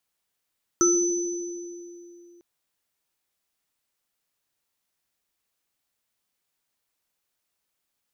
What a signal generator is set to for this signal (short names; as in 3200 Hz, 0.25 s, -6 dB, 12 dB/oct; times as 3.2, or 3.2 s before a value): sine partials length 1.60 s, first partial 347 Hz, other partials 1320/6030 Hz, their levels -5/-0.5 dB, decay 2.99 s, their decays 0.32/1.95 s, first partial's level -18 dB